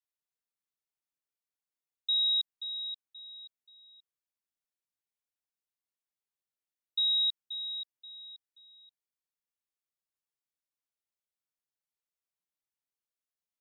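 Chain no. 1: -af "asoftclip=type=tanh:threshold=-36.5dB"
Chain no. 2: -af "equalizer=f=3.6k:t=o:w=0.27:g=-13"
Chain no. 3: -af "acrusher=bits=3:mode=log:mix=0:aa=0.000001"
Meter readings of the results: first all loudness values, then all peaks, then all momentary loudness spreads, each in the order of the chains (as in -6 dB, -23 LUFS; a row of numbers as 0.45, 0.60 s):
-39.0, -38.0, -29.5 LUFS; -36.5, -33.0, -25.5 dBFS; 20, 21, 20 LU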